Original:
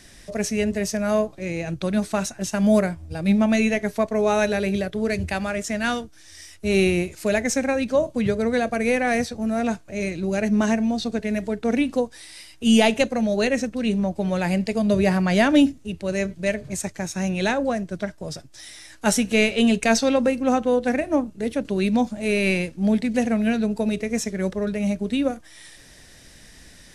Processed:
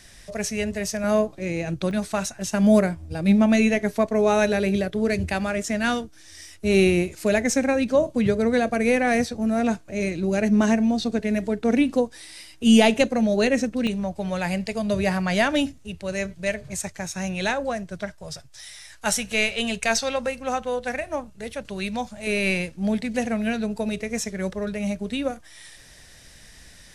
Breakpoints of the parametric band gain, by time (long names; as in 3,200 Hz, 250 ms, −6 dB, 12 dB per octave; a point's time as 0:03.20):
parametric band 290 Hz 1.3 octaves
−7 dB
from 0:01.04 +1.5 dB
from 0:01.91 −5.5 dB
from 0:02.50 +2 dB
from 0:13.87 −8.5 dB
from 0:18.16 −15 dB
from 0:22.27 −6 dB